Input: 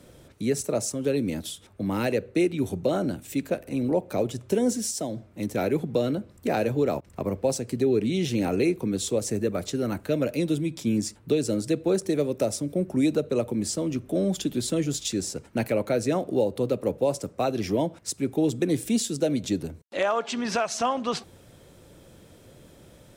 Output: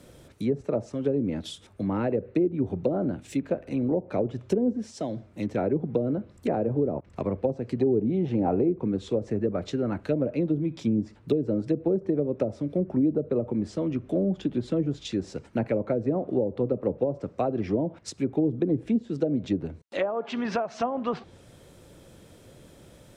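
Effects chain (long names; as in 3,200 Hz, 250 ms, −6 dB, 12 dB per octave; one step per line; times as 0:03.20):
treble cut that deepens with the level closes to 480 Hz, closed at −19.5 dBFS
0:07.78–0:08.69: parametric band 800 Hz +8.5 dB 0.59 octaves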